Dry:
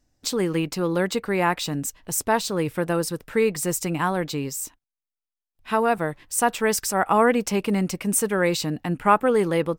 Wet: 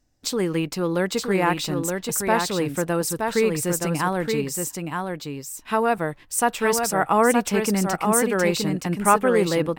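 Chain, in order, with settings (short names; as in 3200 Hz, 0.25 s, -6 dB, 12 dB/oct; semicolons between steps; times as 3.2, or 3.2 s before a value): echo 0.921 s -4.5 dB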